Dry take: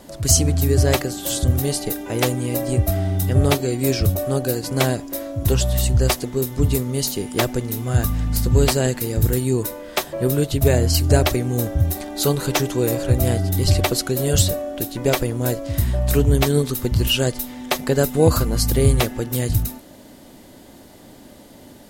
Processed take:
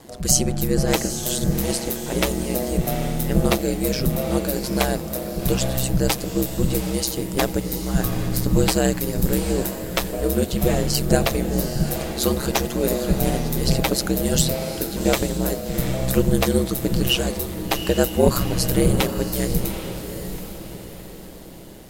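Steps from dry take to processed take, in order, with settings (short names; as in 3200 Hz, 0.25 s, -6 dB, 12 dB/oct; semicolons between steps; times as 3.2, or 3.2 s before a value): bell 72 Hz -7 dB 0.52 oct; ring modulator 65 Hz; diffused feedback echo 0.793 s, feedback 44%, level -9 dB; gain +1.5 dB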